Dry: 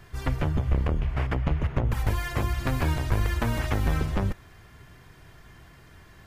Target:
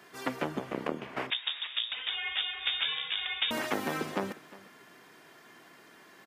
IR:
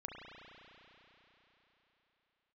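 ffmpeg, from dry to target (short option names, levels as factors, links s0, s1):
-filter_complex "[0:a]highpass=f=230:w=0.5412,highpass=f=230:w=1.3066,aecho=1:1:356:0.106,asettb=1/sr,asplit=3[s0][s1][s2];[s0]atrim=end=1.304[s3];[s1]atrim=start=1.3:end=3.51,asetpts=PTS-STARTPTS,afade=t=in:d=0.004:c=qsin,afade=t=out:st=2.206:d=0.004:c=qsin,lowpass=f=3300:t=q:w=0.5098,lowpass=f=3300:t=q:w=0.6013,lowpass=f=3300:t=q:w=0.9,lowpass=f=3300:t=q:w=2.563,afreqshift=-3900[s4];[s2]atrim=start=3.506[s5];[s3][s4]acrossfade=d=0.004:c1=hsin:c2=qsin[s6];[s6][s5]acrossfade=d=0.004:c1=qsin:c2=hsin"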